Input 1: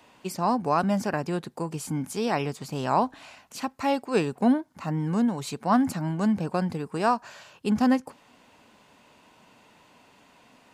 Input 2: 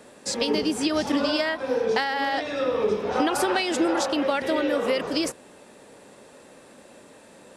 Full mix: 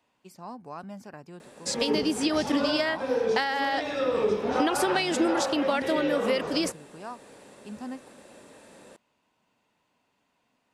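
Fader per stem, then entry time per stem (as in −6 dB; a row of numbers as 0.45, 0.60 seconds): −16.5, −1.5 decibels; 0.00, 1.40 seconds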